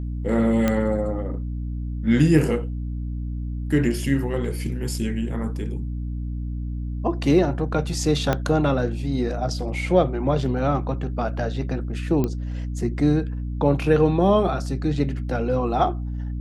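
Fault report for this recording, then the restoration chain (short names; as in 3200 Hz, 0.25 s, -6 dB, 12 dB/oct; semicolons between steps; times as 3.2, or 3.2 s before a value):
hum 60 Hz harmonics 5 -28 dBFS
0.68 pop -8 dBFS
8.33 pop -8 dBFS
12.24 pop -12 dBFS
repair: de-click; de-hum 60 Hz, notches 5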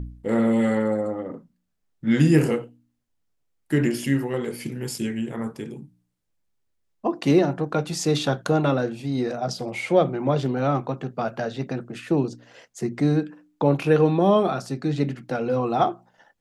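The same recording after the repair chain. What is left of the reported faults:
8.33 pop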